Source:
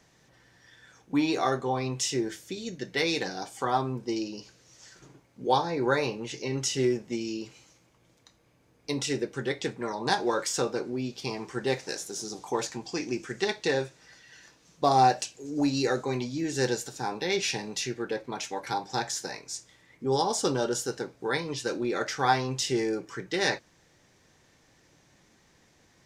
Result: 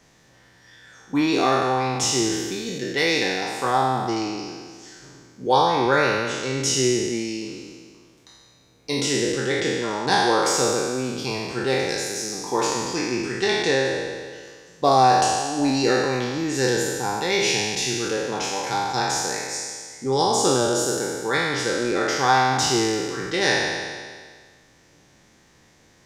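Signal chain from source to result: spectral sustain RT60 1.75 s; trim +3 dB

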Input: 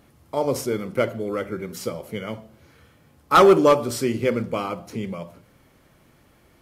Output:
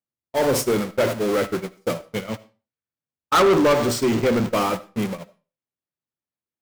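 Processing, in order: jump at every zero crossing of -25 dBFS; high-pass 88 Hz 12 dB/octave; gate -24 dBFS, range -54 dB; 2.25–4.50 s: peaking EQ 11 kHz -14.5 dB 0.31 oct; waveshaping leveller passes 3; reverberation RT60 0.35 s, pre-delay 35 ms, DRR 18 dB; trim -7.5 dB

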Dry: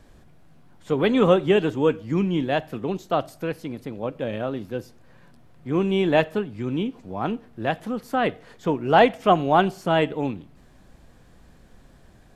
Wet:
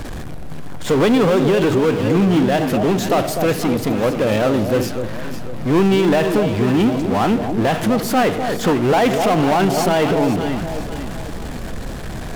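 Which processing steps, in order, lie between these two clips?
power-law waveshaper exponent 0.5; echo whose repeats swap between lows and highs 250 ms, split 800 Hz, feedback 63%, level -7 dB; peak limiter -8.5 dBFS, peak gain reduction 7.5 dB

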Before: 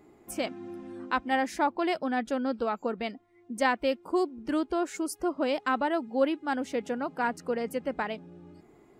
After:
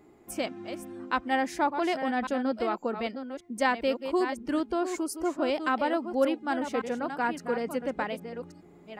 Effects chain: chunks repeated in reverse 568 ms, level -8.5 dB

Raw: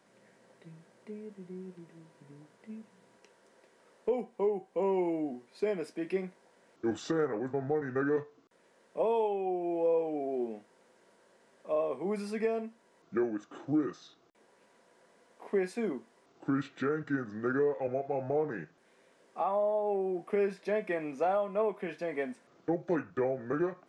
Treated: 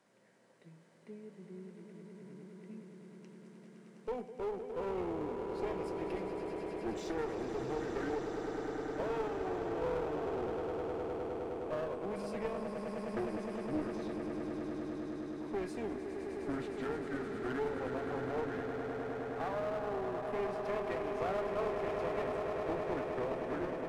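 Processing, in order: echo with a slow build-up 103 ms, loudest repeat 8, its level -10 dB; one-sided clip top -34.5 dBFS; trim -5.5 dB

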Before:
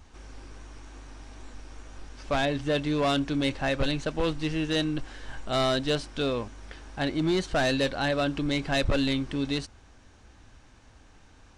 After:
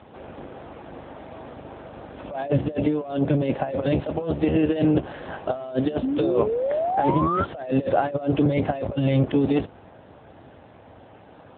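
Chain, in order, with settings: octave divider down 1 oct, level +2 dB; peaking EQ 610 Hz +14 dB 1.5 oct; compressor with a negative ratio -21 dBFS, ratio -0.5; painted sound rise, 6.02–7.45 s, 250–1400 Hz -24 dBFS; AMR-NB 7.95 kbps 8 kHz

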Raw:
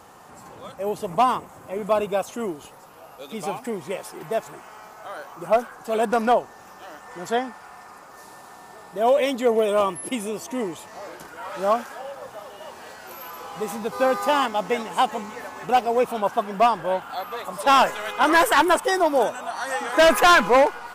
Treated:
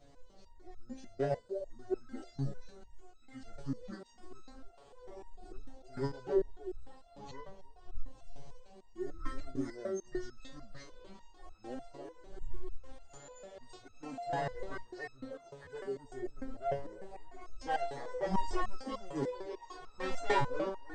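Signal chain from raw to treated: wind noise 100 Hz -32 dBFS; time-frequency box 15.52–15.73 s, 290–2600 Hz -13 dB; pitch shift -9.5 st; chorus voices 6, 0.53 Hz, delay 12 ms, depth 3.9 ms; repeats whose band climbs or falls 308 ms, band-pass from 470 Hz, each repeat 1.4 oct, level -8 dB; resonator arpeggio 6.7 Hz 140–1300 Hz; trim +1 dB

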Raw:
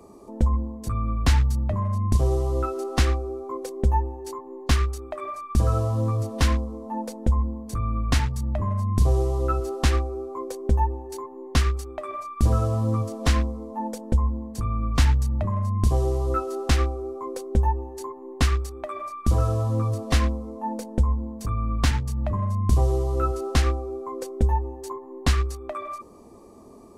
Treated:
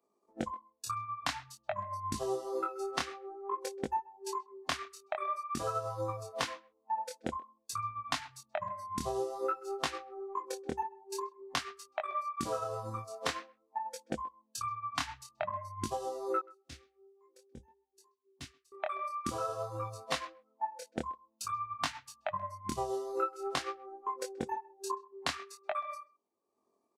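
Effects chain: frequency weighting A; spectral noise reduction 24 dB; 16.39–18.72 s: amplifier tone stack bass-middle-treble 10-0-1; transient shaper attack +8 dB, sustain -7 dB; compression 10:1, threshold -27 dBFS, peak gain reduction 13 dB; chorus 0.5 Hz, delay 19 ms, depth 7 ms; speakerphone echo 130 ms, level -23 dB

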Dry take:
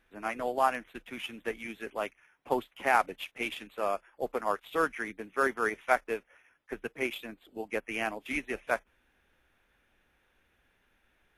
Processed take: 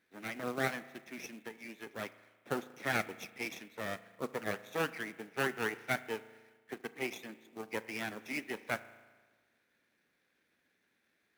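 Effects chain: comb filter that takes the minimum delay 0.51 ms; 1.28–1.94 s: compression 6:1, threshold -38 dBFS, peak gain reduction 9 dB; spring tank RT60 1.4 s, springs 36 ms, chirp 50 ms, DRR 15 dB; short-mantissa float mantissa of 2-bit; Chebyshev high-pass 200 Hz, order 2; trim -3 dB

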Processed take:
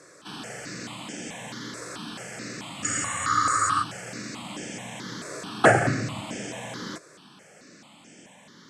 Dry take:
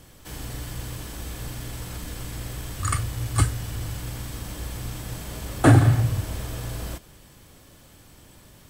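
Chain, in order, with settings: elliptic band-pass 200–7500 Hz, stop band 60 dB; spectral freeze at 2.89 s, 0.93 s; stepped phaser 4.6 Hz 830–4000 Hz; trim +7 dB

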